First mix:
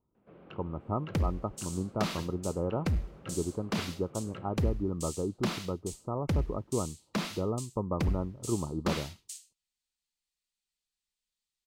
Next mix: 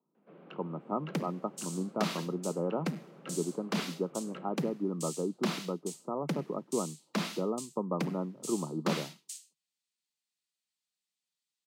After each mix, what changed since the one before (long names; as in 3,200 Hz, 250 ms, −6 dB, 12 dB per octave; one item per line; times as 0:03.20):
master: add Butterworth high-pass 150 Hz 72 dB per octave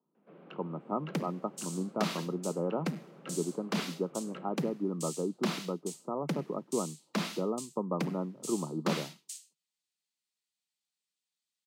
nothing changed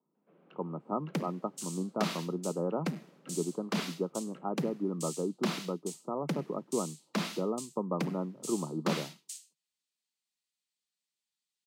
first sound −9.5 dB